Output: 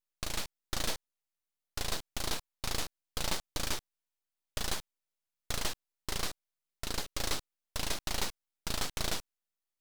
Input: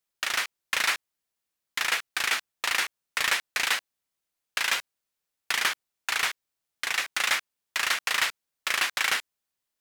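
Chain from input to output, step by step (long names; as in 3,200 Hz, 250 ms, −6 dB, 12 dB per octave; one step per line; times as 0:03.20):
full-wave rectification
level −6 dB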